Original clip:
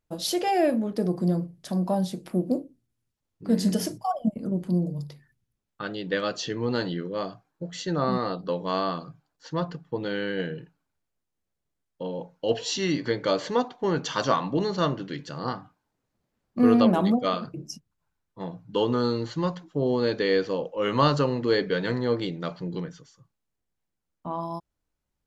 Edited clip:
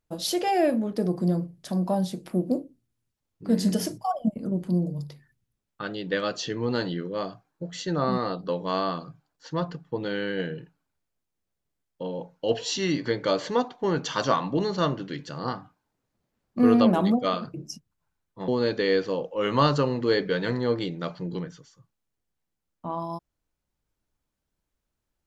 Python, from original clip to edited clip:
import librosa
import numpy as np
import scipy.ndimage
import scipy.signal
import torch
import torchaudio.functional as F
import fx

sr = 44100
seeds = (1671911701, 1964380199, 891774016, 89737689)

y = fx.edit(x, sr, fx.cut(start_s=18.48, length_s=1.41), tone=tone)